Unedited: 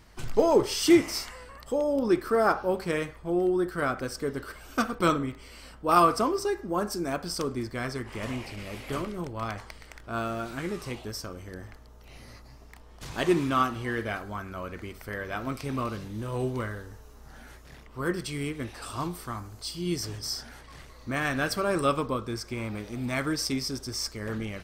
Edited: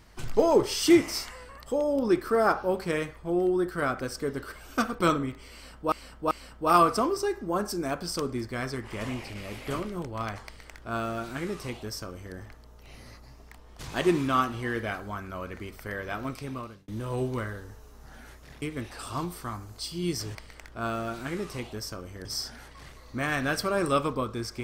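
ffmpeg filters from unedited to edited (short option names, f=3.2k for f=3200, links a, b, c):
-filter_complex "[0:a]asplit=7[a][b][c][d][e][f][g];[a]atrim=end=5.922[h];[b]atrim=start=5.528:end=5.922[i];[c]atrim=start=5.528:end=16.1,asetpts=PTS-STARTPTS,afade=t=out:st=9.642:d=0.93:c=qsin[j];[d]atrim=start=16.1:end=17.842,asetpts=PTS-STARTPTS,afade=t=in:d=0.004:c=hsin[k];[e]atrim=start=18.448:end=20.182[l];[f]atrim=start=9.668:end=11.572[m];[g]atrim=start=20.178[n];[h][i]acrossfade=d=0.004:c1=hsin:c2=hsin[o];[j][k]concat=n=2:v=0:a=1[p];[o][p]acrossfade=d=0.004:c1=hsin:c2=hsin[q];[q][l]acrossfade=d=0.004:c1=hsin:c2=hsin[r];[r][m]acrossfade=d=0.004:c1=hsin:c2=hsin[s];[s][n]acrossfade=d=0.004:c1=hsin:c2=hsin"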